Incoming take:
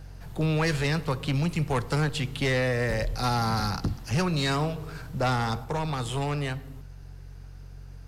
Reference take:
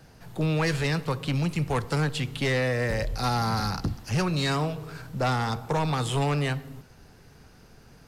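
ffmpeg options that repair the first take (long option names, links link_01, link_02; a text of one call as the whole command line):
ffmpeg -i in.wav -af "bandreject=frequency=45.8:width_type=h:width=4,bandreject=frequency=91.6:width_type=h:width=4,bandreject=frequency=137.4:width_type=h:width=4,asetnsamples=nb_out_samples=441:pad=0,asendcmd='5.64 volume volume 3.5dB',volume=0dB" out.wav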